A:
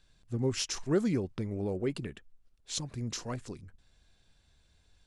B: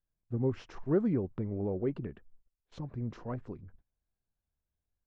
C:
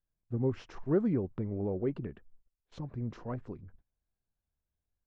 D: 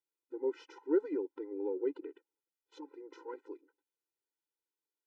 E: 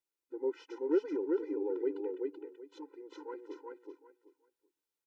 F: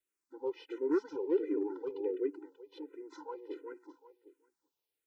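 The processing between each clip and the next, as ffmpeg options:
ffmpeg -i in.wav -af "lowpass=1200,agate=range=-21dB:threshold=-56dB:ratio=16:detection=peak" out.wav
ffmpeg -i in.wav -af anull out.wav
ffmpeg -i in.wav -af "afftfilt=real='re*eq(mod(floor(b*sr/1024/260),2),1)':imag='im*eq(mod(floor(b*sr/1024/260),2),1)':win_size=1024:overlap=0.75" out.wav
ffmpeg -i in.wav -af "aecho=1:1:381|762|1143:0.708|0.142|0.0283" out.wav
ffmpeg -i in.wav -filter_complex "[0:a]acrossover=split=300|680|1600[link_01][link_02][link_03][link_04];[link_01]asoftclip=type=hard:threshold=-38.5dB[link_05];[link_05][link_02][link_03][link_04]amix=inputs=4:normalize=0,asplit=2[link_06][link_07];[link_07]afreqshift=-1.4[link_08];[link_06][link_08]amix=inputs=2:normalize=1,volume=4dB" out.wav

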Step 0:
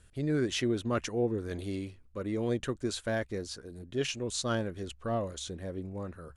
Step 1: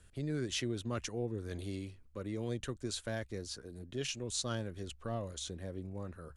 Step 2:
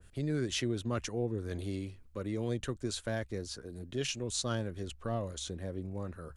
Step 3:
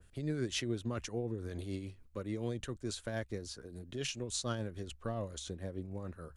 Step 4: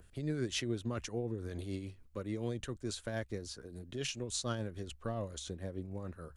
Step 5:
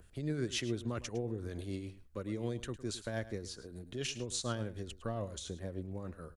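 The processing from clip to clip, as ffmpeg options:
ffmpeg -i in.wav -filter_complex "[0:a]acrossover=split=130|3000[link_01][link_02][link_03];[link_02]acompressor=threshold=-46dB:ratio=1.5[link_04];[link_01][link_04][link_03]amix=inputs=3:normalize=0,volume=-1.5dB" out.wav
ffmpeg -i in.wav -af "adynamicequalizer=threshold=0.00178:dfrequency=1900:dqfactor=0.7:tfrequency=1900:tqfactor=0.7:attack=5:release=100:ratio=0.375:range=1.5:mode=cutabove:tftype=highshelf,volume=3.5dB" out.wav
ffmpeg -i in.wav -af "tremolo=f=6.9:d=0.45,volume=-1dB" out.wav
ffmpeg -i in.wav -af "acompressor=mode=upward:threshold=-56dB:ratio=2.5" out.wav
ffmpeg -i in.wav -af "aecho=1:1:107:0.168" out.wav

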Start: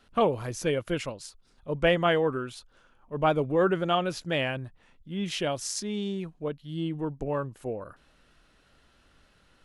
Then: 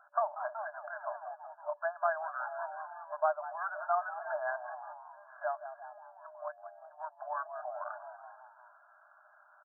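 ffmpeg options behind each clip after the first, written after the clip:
ffmpeg -i in.wav -filter_complex "[0:a]asplit=6[link_01][link_02][link_03][link_04][link_05][link_06];[link_02]adelay=186,afreqshift=100,volume=-18dB[link_07];[link_03]adelay=372,afreqshift=200,volume=-22.4dB[link_08];[link_04]adelay=558,afreqshift=300,volume=-26.9dB[link_09];[link_05]adelay=744,afreqshift=400,volume=-31.3dB[link_10];[link_06]adelay=930,afreqshift=500,volume=-35.7dB[link_11];[link_01][link_07][link_08][link_09][link_10][link_11]amix=inputs=6:normalize=0,acompressor=threshold=-33dB:ratio=5,afftfilt=real='re*between(b*sr/4096,590,1700)':imag='im*between(b*sr/4096,590,1700)':win_size=4096:overlap=0.75,volume=7dB" out.wav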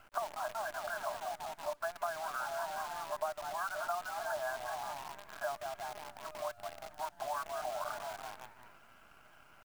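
ffmpeg -i in.wav -af "acompressor=threshold=-40dB:ratio=5,acrusher=bits=9:dc=4:mix=0:aa=0.000001,volume=5dB" out.wav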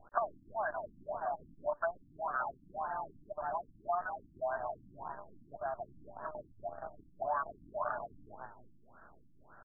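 ffmpeg -i in.wav -af "afftfilt=real='re*lt(b*sr/1024,310*pow(1900/310,0.5+0.5*sin(2*PI*1.8*pts/sr)))':imag='im*lt(b*sr/1024,310*pow(1900/310,0.5+0.5*sin(2*PI*1.8*pts/sr)))':win_size=1024:overlap=0.75,volume=4dB" out.wav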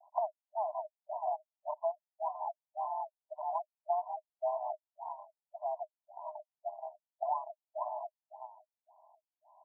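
ffmpeg -i in.wav -af "asuperpass=centerf=800:order=20:qfactor=1.9,volume=2.5dB" out.wav

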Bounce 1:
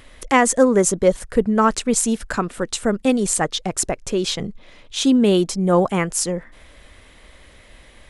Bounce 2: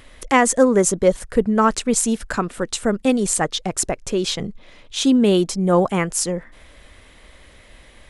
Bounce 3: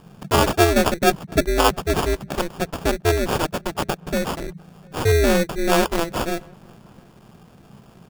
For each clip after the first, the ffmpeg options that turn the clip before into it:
ffmpeg -i in.wav -af anull out.wav
ffmpeg -i in.wav -filter_complex "[0:a]acrusher=samples=22:mix=1:aa=0.000001,aeval=exprs='val(0)*sin(2*PI*170*n/s)':channel_layout=same,asplit=2[link_01][link_02];[link_02]adelay=699.7,volume=-29dB,highshelf=frequency=4000:gain=-15.7[link_03];[link_01][link_03]amix=inputs=2:normalize=0,volume=1.5dB" out.wav

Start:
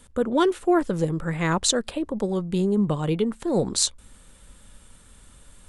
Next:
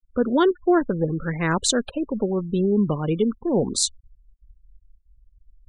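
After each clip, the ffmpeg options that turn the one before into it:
ffmpeg -i in.wav -af "afftfilt=real='re*gte(hypot(re,im),0.0282)':imag='im*gte(hypot(re,im),0.0282)':win_size=1024:overlap=0.75,equalizer=frequency=250:width_type=o:width=0.33:gain=5,equalizer=frequency=400:width_type=o:width=0.33:gain=3,equalizer=frequency=1600:width_type=o:width=0.33:gain=4" out.wav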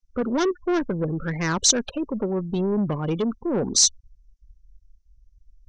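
ffmpeg -i in.wav -af "asoftclip=type=tanh:threshold=-18dB,lowpass=frequency=5900:width_type=q:width=6.8" out.wav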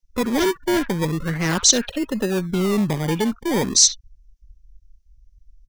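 ffmpeg -i in.wav -filter_complex "[0:a]acrossover=split=300|1300|4000[link_01][link_02][link_03][link_04];[link_02]acrusher=samples=26:mix=1:aa=0.000001:lfo=1:lforange=15.6:lforate=0.38[link_05];[link_03]aecho=1:1:45|65:0.316|0.501[link_06];[link_01][link_05][link_06][link_04]amix=inputs=4:normalize=0,volume=3.5dB" out.wav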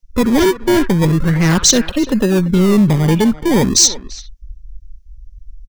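ffmpeg -i in.wav -filter_complex "[0:a]lowshelf=frequency=200:gain=9.5,acontrast=83,asplit=2[link_01][link_02];[link_02]adelay=340,highpass=300,lowpass=3400,asoftclip=type=hard:threshold=-10dB,volume=-14dB[link_03];[link_01][link_03]amix=inputs=2:normalize=0,volume=-1dB" out.wav

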